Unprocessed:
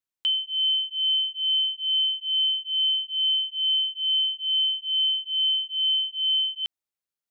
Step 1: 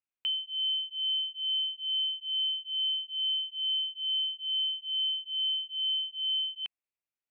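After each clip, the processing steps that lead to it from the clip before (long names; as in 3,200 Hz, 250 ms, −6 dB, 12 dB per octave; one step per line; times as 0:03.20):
drawn EQ curve 1,700 Hz 0 dB, 2,600 Hz +6 dB, 3,800 Hz −12 dB
level −5 dB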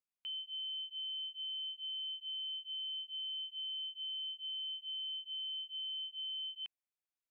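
brickwall limiter −32 dBFS, peak gain reduction 8 dB
level −6 dB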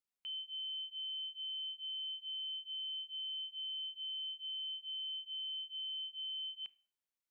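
four-comb reverb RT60 0.43 s, combs from 28 ms, DRR 20 dB
level −1.5 dB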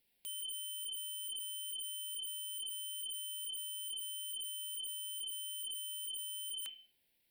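phaser with its sweep stopped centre 2,900 Hz, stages 4
sine wavefolder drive 15 dB, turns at −38.5 dBFS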